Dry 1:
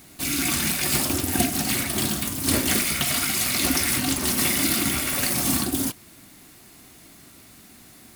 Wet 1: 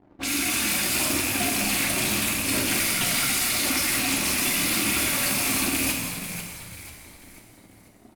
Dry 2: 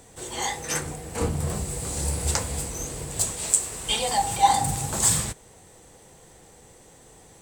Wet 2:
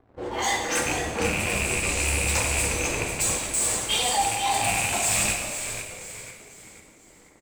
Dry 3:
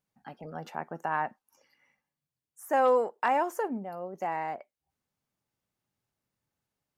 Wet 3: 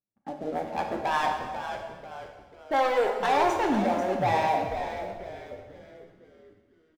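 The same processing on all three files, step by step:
rattling part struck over -31 dBFS, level -14 dBFS; low-pass opened by the level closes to 400 Hz, open at -22.5 dBFS; low shelf 190 Hz -9 dB; reverse; compressor 10:1, threshold -29 dBFS; reverse; sample leveller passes 3; flange 2 Hz, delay 2.8 ms, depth 1 ms, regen -47%; on a send: frequency-shifting echo 0.491 s, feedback 41%, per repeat -95 Hz, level -9 dB; on the sum: plate-style reverb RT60 1.4 s, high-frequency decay 0.95×, DRR 2 dB; normalise peaks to -12 dBFS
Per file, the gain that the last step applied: +1.0, +2.0, +5.5 dB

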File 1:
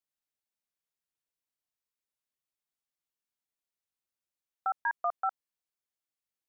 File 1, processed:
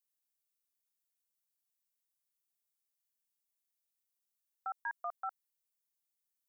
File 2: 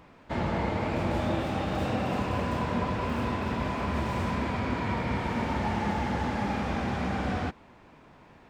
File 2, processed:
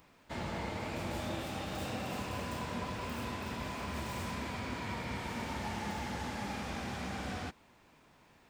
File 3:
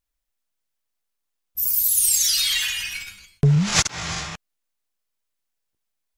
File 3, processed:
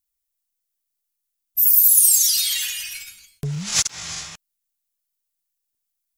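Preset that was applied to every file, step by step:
pre-emphasis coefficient 0.8; gain +3.5 dB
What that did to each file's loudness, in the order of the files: -8.5, -9.0, +4.5 LU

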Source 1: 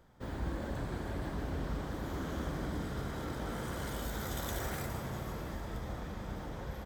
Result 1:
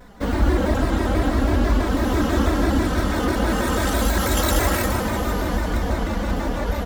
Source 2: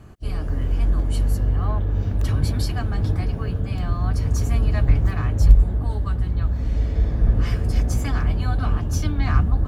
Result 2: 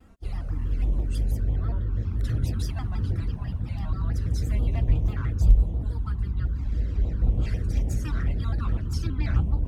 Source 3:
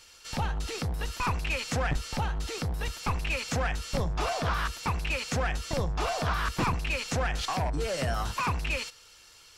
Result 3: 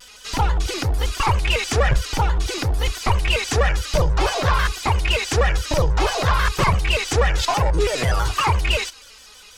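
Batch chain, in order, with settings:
envelope flanger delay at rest 4.5 ms, full sweep at -14 dBFS; shaped vibrato square 6.1 Hz, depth 160 cents; normalise peaks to -6 dBFS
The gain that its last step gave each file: +21.0, -5.0, +12.5 dB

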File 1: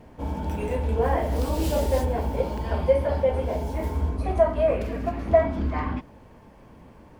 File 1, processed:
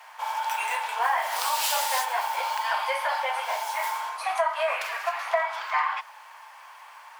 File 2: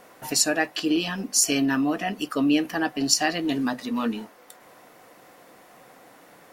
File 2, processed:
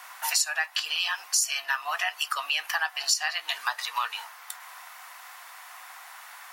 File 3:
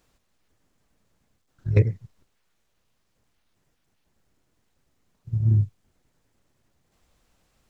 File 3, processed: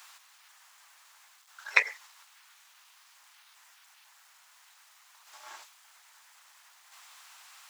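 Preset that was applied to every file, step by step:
steep high-pass 880 Hz 36 dB/oct; compressor 4:1, threshold -34 dBFS; match loudness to -27 LUFS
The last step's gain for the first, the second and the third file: +13.0, +9.5, +18.5 dB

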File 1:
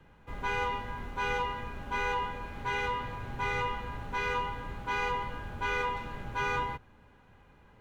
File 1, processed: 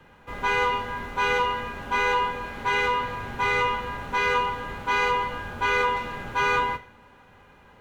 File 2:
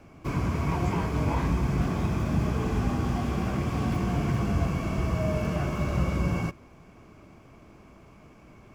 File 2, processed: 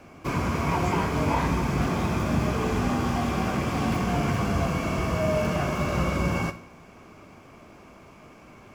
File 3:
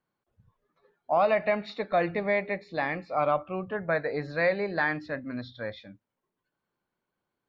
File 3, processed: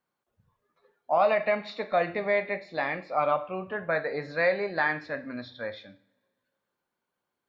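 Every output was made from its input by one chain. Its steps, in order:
low shelf 220 Hz -9 dB; two-slope reverb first 0.45 s, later 2.1 s, from -26 dB, DRR 8.5 dB; normalise peaks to -12 dBFS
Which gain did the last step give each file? +8.5, +6.0, +1.0 dB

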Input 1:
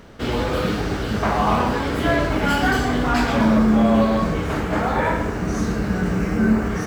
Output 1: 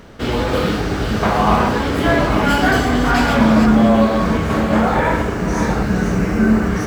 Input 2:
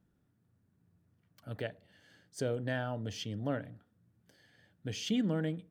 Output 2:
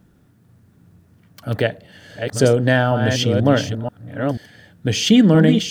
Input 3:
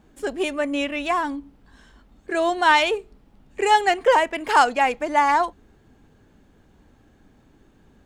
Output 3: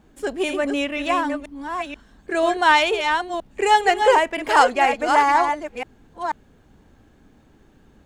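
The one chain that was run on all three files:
reverse delay 0.486 s, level -6 dB; normalise peaks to -2 dBFS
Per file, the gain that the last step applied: +3.5, +19.0, +1.0 dB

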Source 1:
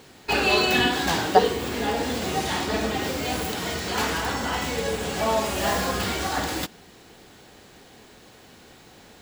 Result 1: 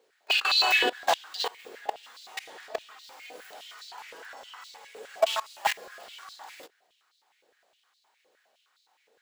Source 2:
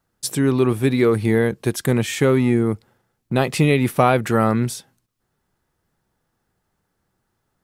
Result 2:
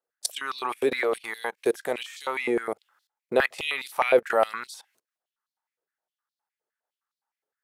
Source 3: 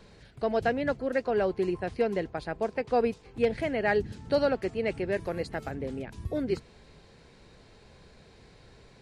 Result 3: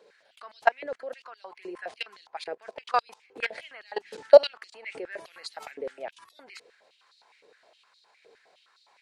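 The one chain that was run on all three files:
level quantiser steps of 23 dB; stepped high-pass 9.7 Hz 470–4100 Hz; match loudness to -27 LUFS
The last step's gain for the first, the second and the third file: -2.5, +0.5, +7.5 dB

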